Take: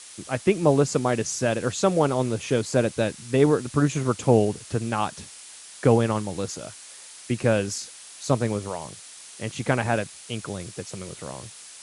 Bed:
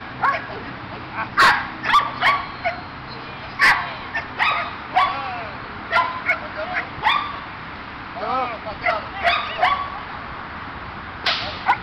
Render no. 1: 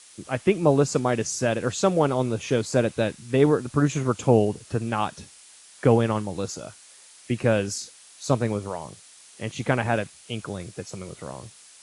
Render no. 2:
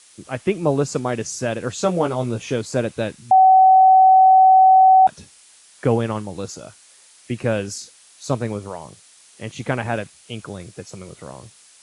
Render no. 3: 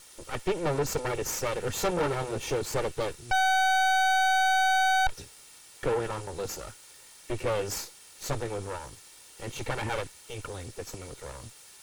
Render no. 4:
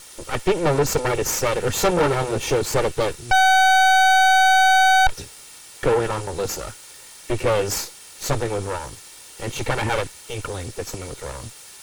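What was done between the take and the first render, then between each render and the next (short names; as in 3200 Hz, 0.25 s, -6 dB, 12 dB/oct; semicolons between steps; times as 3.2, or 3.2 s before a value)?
noise print and reduce 6 dB
1.77–2.53 doubler 17 ms -6 dB; 3.31–5.07 bleep 757 Hz -7.5 dBFS
minimum comb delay 2.2 ms; soft clip -22 dBFS, distortion -6 dB
gain +9 dB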